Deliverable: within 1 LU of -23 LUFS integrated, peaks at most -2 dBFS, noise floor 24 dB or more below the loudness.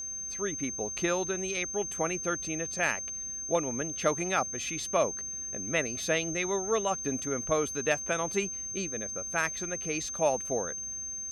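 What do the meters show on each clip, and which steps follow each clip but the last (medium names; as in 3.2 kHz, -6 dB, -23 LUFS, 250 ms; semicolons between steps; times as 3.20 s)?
tick rate 23 per s; steady tone 6.3 kHz; tone level -35 dBFS; loudness -30.5 LUFS; peak level -14.5 dBFS; loudness target -23.0 LUFS
-> de-click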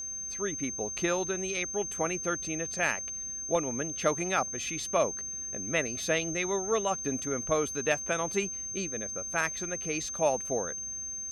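tick rate 0 per s; steady tone 6.3 kHz; tone level -35 dBFS
-> band-stop 6.3 kHz, Q 30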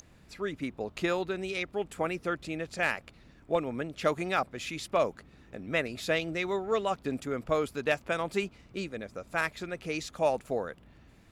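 steady tone not found; loudness -32.5 LUFS; peak level -15.0 dBFS; loudness target -23.0 LUFS
-> trim +9.5 dB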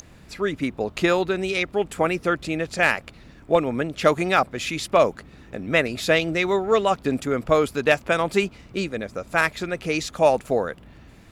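loudness -23.0 LUFS; peak level -5.5 dBFS; noise floor -49 dBFS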